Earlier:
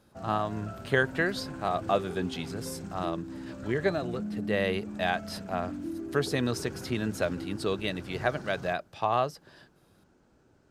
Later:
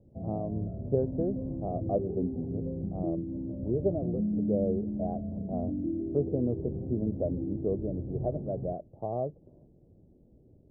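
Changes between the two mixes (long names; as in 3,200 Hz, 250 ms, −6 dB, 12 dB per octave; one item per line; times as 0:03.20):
background: add low-shelf EQ 240 Hz +9.5 dB
master: add Butterworth low-pass 630 Hz 36 dB per octave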